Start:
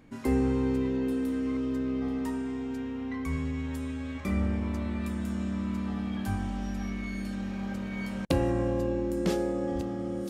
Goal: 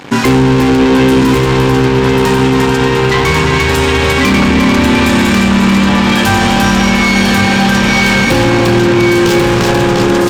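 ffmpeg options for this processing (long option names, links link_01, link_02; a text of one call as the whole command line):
ffmpeg -i in.wav -filter_complex "[0:a]aeval=exprs='sgn(val(0))*max(abs(val(0))-0.00178,0)':channel_layout=same,aresample=32000,aresample=44100,asplit=2[link_01][link_02];[link_02]aecho=0:1:349|698|1047|1396|1745:0.531|0.218|0.0892|0.0366|0.015[link_03];[link_01][link_03]amix=inputs=2:normalize=0,asplit=2[link_04][link_05];[link_05]highpass=frequency=720:poles=1,volume=34dB,asoftclip=type=tanh:threshold=-12dB[link_06];[link_04][link_06]amix=inputs=2:normalize=0,lowpass=frequency=5200:poles=1,volume=-6dB,equalizer=frequency=125:width_type=o:width=0.33:gain=10,equalizer=frequency=630:width_type=o:width=0.33:gain=-11,equalizer=frequency=1250:width_type=o:width=0.33:gain=-5,equalizer=frequency=2000:width_type=o:width=0.33:gain=-4,equalizer=frequency=10000:width_type=o:width=0.33:gain=-5,asplit=2[link_07][link_08];[link_08]aecho=0:1:1092:0.668[link_09];[link_07][link_09]amix=inputs=2:normalize=0,alimiter=level_in=14.5dB:limit=-1dB:release=50:level=0:latency=1,volume=-1dB" out.wav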